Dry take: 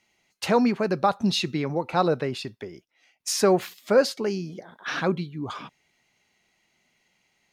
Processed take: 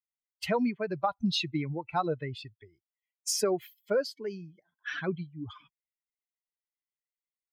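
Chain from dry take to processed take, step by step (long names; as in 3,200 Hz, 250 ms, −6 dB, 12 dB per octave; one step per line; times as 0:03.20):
spectral dynamics exaggerated over time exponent 2
downward compressor 6 to 1, threshold −24 dBFS, peak gain reduction 9.5 dB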